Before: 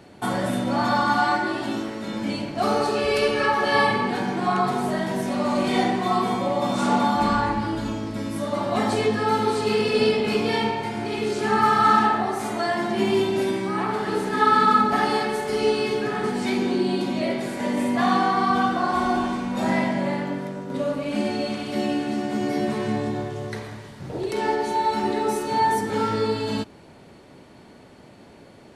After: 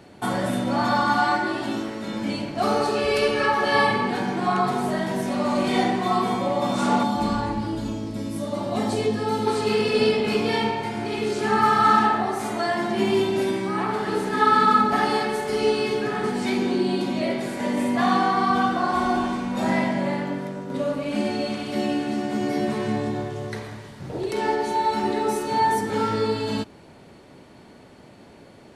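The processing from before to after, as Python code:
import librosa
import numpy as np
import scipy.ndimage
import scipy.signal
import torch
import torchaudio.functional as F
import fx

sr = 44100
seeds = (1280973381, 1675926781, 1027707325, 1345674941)

y = fx.peak_eq(x, sr, hz=1500.0, db=-8.0, octaves=1.8, at=(7.03, 9.47))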